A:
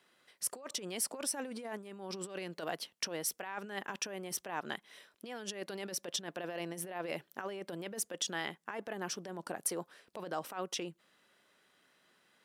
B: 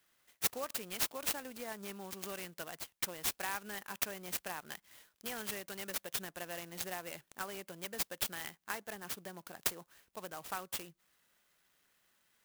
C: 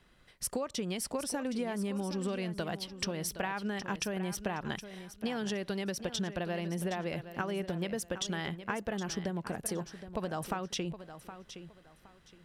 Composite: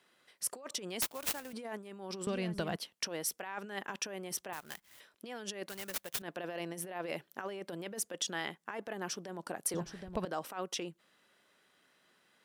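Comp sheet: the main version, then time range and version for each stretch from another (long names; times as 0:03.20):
A
0:01.02–0:01.53: punch in from B
0:02.27–0:02.76: punch in from C
0:04.53–0:05.00: punch in from B
0:05.69–0:06.22: punch in from B
0:09.74–0:10.25: punch in from C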